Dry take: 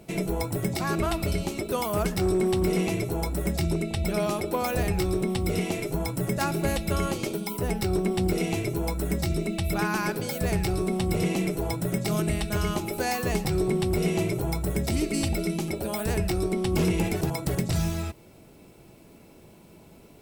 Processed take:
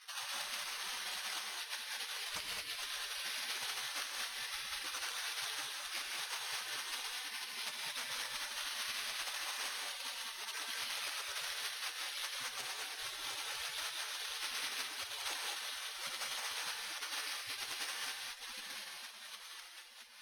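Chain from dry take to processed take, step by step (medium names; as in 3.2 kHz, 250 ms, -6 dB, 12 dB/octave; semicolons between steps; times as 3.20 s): octave divider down 1 oct, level -2 dB; 10.88–13.01 s: ten-band graphic EQ 250 Hz +4 dB, 500 Hz -4 dB, 8 kHz +3 dB; integer overflow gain 16 dB; echo that smears into a reverb 728 ms, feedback 43%, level -9 dB; careless resampling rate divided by 6×, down none, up zero stuff; spectral gate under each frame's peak -30 dB weak; distance through air 64 m; compression 2.5:1, threshold -60 dBFS, peak gain reduction 15 dB; saturation -38.5 dBFS, distortion -30 dB; gated-style reverb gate 240 ms rising, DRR 0 dB; trim +15 dB; Opus 256 kbps 48 kHz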